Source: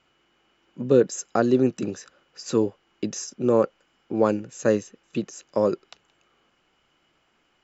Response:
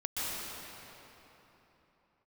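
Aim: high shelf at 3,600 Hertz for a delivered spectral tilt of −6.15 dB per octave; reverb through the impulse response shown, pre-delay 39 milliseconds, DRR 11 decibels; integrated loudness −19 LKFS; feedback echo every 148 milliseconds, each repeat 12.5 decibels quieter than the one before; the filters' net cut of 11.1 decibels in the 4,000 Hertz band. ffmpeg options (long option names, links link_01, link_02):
-filter_complex "[0:a]highshelf=frequency=3600:gain=-8,equalizer=frequency=4000:width_type=o:gain=-9,aecho=1:1:148|296|444:0.237|0.0569|0.0137,asplit=2[link_01][link_02];[1:a]atrim=start_sample=2205,adelay=39[link_03];[link_02][link_03]afir=irnorm=-1:irlink=0,volume=-17.5dB[link_04];[link_01][link_04]amix=inputs=2:normalize=0,volume=5.5dB"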